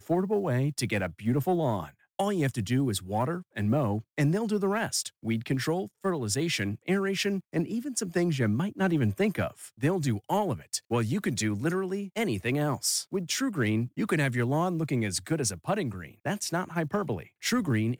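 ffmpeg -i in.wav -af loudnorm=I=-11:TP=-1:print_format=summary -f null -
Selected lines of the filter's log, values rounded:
Input Integrated:    -29.2 LUFS
Input True Peak:     -16.5 dBTP
Input LRA:             1.6 LU
Input Threshold:     -39.2 LUFS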